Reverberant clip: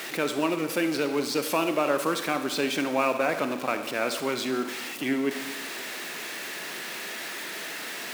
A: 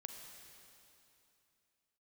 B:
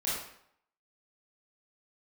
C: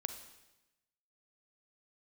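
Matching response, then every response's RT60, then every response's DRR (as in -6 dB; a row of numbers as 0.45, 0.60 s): C; 2.9, 0.70, 1.0 s; 3.5, -9.0, 8.0 dB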